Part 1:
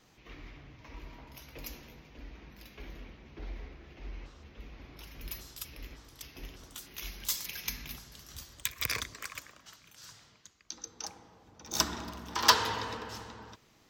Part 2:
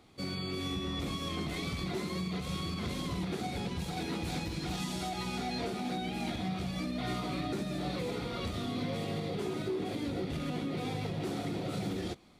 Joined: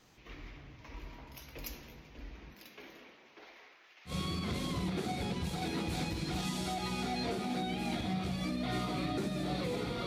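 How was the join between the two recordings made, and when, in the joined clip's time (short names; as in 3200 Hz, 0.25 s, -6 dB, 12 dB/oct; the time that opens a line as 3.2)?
part 1
2.53–4.13 HPF 180 Hz -> 1400 Hz
4.09 switch to part 2 from 2.44 s, crossfade 0.08 s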